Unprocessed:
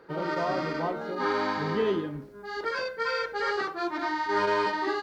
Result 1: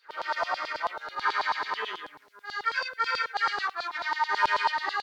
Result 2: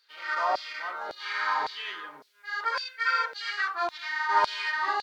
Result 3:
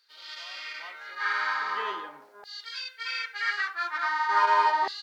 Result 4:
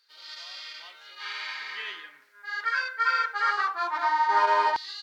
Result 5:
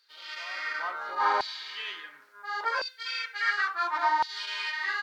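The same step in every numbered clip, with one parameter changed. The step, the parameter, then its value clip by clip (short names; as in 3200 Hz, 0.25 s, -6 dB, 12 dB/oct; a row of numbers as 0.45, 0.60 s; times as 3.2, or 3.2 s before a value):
LFO high-pass, rate: 9.2, 1.8, 0.41, 0.21, 0.71 Hz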